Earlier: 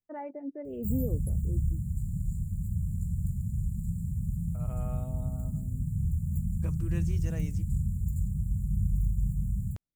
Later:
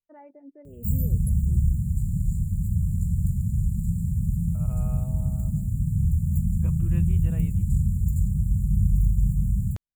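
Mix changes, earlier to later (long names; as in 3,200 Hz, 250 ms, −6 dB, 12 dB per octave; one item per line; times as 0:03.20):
first voice −9.0 dB
second voice: add Chebyshev low-pass with heavy ripple 3,700 Hz, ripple 3 dB
background +7.0 dB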